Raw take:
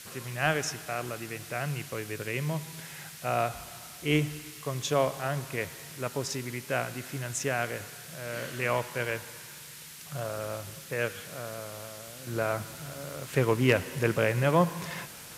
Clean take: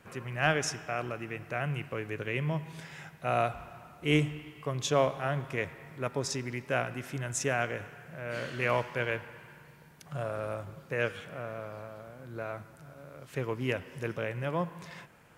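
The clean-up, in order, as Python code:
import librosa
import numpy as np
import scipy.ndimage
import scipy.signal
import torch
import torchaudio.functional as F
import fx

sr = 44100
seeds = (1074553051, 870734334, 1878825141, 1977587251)

y = fx.fix_declip(x, sr, threshold_db=-11.5)
y = fx.noise_reduce(y, sr, print_start_s=9.58, print_end_s=10.08, reduce_db=6.0)
y = fx.gain(y, sr, db=fx.steps((0.0, 0.0), (12.27, -8.5)))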